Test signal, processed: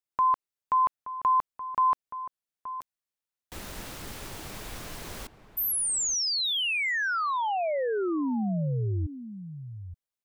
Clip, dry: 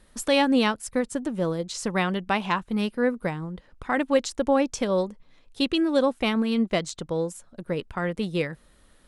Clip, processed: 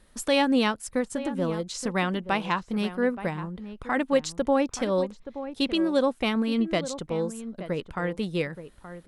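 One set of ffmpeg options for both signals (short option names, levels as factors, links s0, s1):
-filter_complex "[0:a]asplit=2[s0][s1];[s1]adelay=874.6,volume=0.251,highshelf=f=4000:g=-19.7[s2];[s0][s2]amix=inputs=2:normalize=0,volume=0.841"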